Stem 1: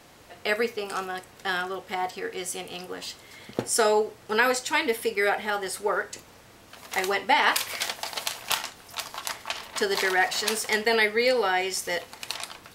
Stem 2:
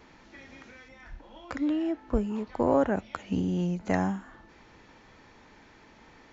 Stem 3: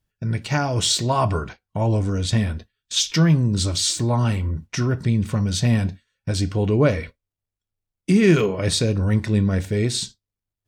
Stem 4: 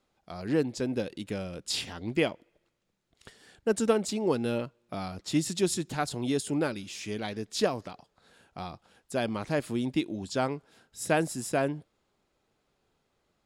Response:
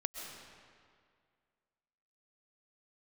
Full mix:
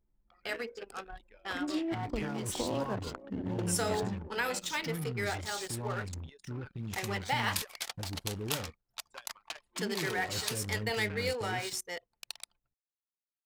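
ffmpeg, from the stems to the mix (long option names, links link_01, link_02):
-filter_complex "[0:a]highshelf=frequency=4200:gain=6,bandreject=frequency=52.36:width_type=h:width=4,bandreject=frequency=104.72:width_type=h:width=4,bandreject=frequency=157.08:width_type=h:width=4,bandreject=frequency=209.44:width_type=h:width=4,bandreject=frequency=261.8:width_type=h:width=4,bandreject=frequency=314.16:width_type=h:width=4,bandreject=frequency=366.52:width_type=h:width=4,bandreject=frequency=418.88:width_type=h:width=4,bandreject=frequency=471.24:width_type=h:width=4,acrusher=bits=6:mix=0:aa=0.000001,volume=-11.5dB[link_01];[1:a]bandreject=frequency=60:width_type=h:width=6,bandreject=frequency=120:width_type=h:width=6,bandreject=frequency=180:width_type=h:width=6,bandreject=frequency=240:width_type=h:width=6,bandreject=frequency=300:width_type=h:width=6,alimiter=limit=-19.5dB:level=0:latency=1:release=488,volume=-5dB,asplit=2[link_02][link_03];[link_03]volume=-12dB[link_04];[2:a]acrusher=bits=4:mix=0:aa=0.000001,adelay=1700,volume=-17dB[link_05];[3:a]highpass=1200,acrossover=split=2100|6100[link_06][link_07][link_08];[link_06]acompressor=threshold=-49dB:ratio=4[link_09];[link_07]acompressor=threshold=-50dB:ratio=4[link_10];[link_08]acompressor=threshold=-50dB:ratio=4[link_11];[link_09][link_10][link_11]amix=inputs=3:normalize=0,highshelf=frequency=3900:gain=-5.5,volume=2.5dB[link_12];[link_05][link_12]amix=inputs=2:normalize=0,asuperstop=centerf=660:order=4:qfactor=6.3,alimiter=level_in=7dB:limit=-24dB:level=0:latency=1:release=19,volume=-7dB,volume=0dB[link_13];[link_04]aecho=0:1:467|934|1401|1868|2335|2802|3269:1|0.5|0.25|0.125|0.0625|0.0312|0.0156[link_14];[link_01][link_02][link_13][link_14]amix=inputs=4:normalize=0,anlmdn=0.631"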